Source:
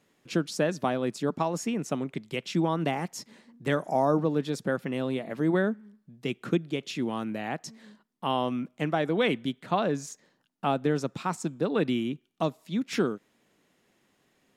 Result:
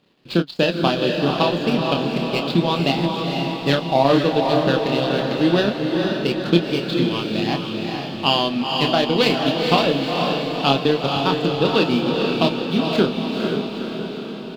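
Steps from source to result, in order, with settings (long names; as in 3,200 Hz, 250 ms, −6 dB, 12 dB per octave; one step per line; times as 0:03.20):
running median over 15 samples
flat-topped bell 3,500 Hz +15 dB 1.1 octaves
double-tracking delay 29 ms −5 dB
transient designer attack +2 dB, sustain −12 dB
feedback delay with all-pass diffusion 473 ms, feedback 60%, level −3 dB
level +6 dB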